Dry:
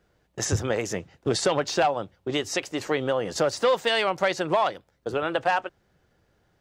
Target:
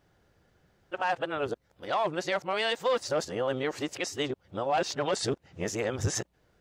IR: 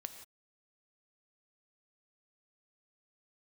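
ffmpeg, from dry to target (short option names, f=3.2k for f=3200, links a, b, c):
-af "areverse,atempo=1,alimiter=limit=-19dB:level=0:latency=1:release=316"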